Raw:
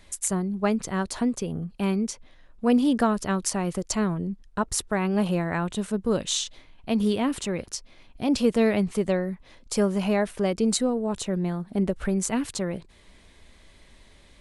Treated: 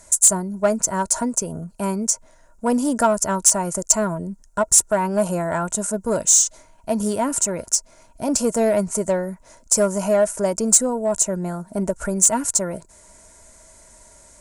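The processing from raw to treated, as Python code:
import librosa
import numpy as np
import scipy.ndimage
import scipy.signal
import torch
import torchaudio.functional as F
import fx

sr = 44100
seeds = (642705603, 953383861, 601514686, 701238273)

p1 = fx.high_shelf_res(x, sr, hz=5000.0, db=13.0, q=3.0)
p2 = fx.small_body(p1, sr, hz=(640.0, 940.0, 1400.0), ring_ms=45, db=15)
p3 = fx.cheby_harmonics(p2, sr, harmonics=(5,), levels_db=(-10,), full_scale_db=8.5)
p4 = np.clip(p3, -10.0 ** (-9.0 / 20.0), 10.0 ** (-9.0 / 20.0))
p5 = p3 + (p4 * 10.0 ** (-9.0 / 20.0))
y = p5 * 10.0 ** (-11.0 / 20.0)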